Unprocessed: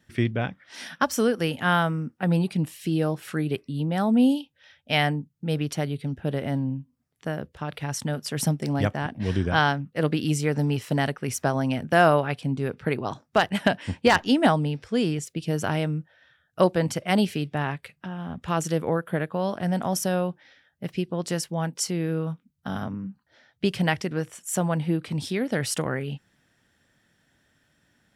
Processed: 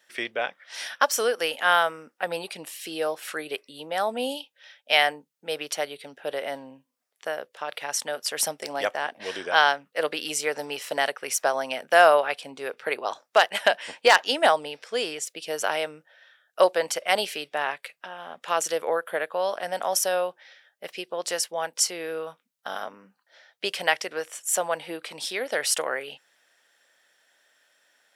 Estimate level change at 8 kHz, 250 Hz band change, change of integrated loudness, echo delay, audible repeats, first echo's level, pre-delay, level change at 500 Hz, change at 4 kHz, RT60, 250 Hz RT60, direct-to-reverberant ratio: +5.5 dB, -16.0 dB, 0.0 dB, no echo, no echo, no echo, no reverb, +1.5 dB, +5.0 dB, no reverb, no reverb, no reverb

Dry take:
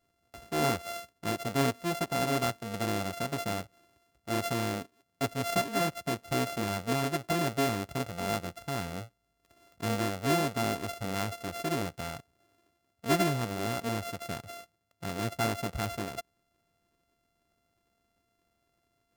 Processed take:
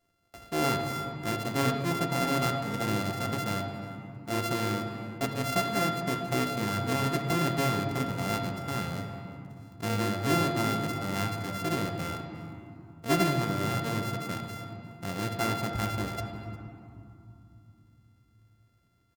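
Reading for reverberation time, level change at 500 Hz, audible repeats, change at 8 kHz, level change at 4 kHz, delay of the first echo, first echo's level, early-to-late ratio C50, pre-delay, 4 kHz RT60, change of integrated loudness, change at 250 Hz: 2.8 s, 0.0 dB, 1, 0.0 dB, +1.5 dB, 355 ms, -20.5 dB, 5.5 dB, 3 ms, 1.5 s, +2.0 dB, +2.5 dB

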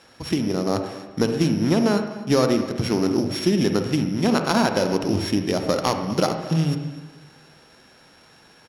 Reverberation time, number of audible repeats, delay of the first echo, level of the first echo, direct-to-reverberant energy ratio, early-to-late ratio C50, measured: 1.2 s, 1, 252 ms, -19.0 dB, 6.0 dB, 6.5 dB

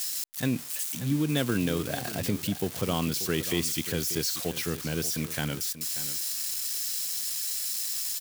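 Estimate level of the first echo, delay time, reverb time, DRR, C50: -13.5 dB, 586 ms, no reverb, no reverb, no reverb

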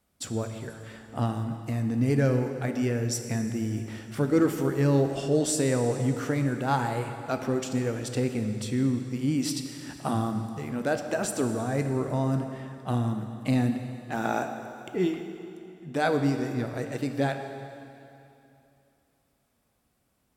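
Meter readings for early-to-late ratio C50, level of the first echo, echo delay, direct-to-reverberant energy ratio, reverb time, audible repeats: 7.0 dB, no echo, no echo, 6.0 dB, 2.8 s, no echo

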